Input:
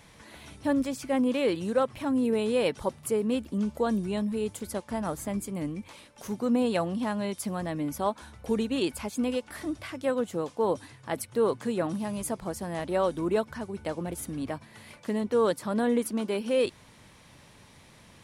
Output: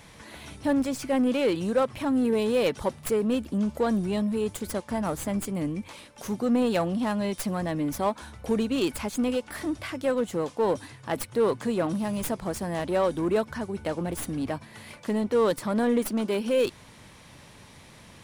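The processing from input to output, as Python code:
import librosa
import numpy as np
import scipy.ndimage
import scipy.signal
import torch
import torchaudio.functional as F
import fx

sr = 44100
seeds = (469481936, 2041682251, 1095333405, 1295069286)

p1 = fx.tracing_dist(x, sr, depth_ms=0.097)
p2 = np.clip(p1, -10.0 ** (-31.5 / 20.0), 10.0 ** (-31.5 / 20.0))
y = p1 + (p2 * librosa.db_to_amplitude(-4.0))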